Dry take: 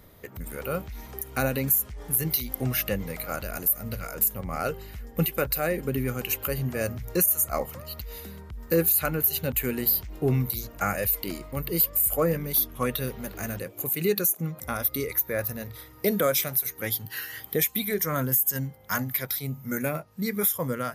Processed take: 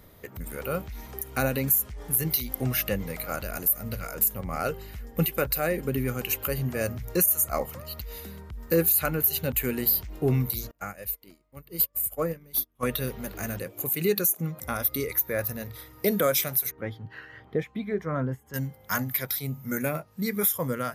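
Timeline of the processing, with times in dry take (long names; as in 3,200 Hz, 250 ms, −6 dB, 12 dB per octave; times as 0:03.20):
0:10.71–0:12.83: expander for the loud parts 2.5 to 1, over −39 dBFS
0:16.71–0:18.54: Bessel low-pass filter 1,200 Hz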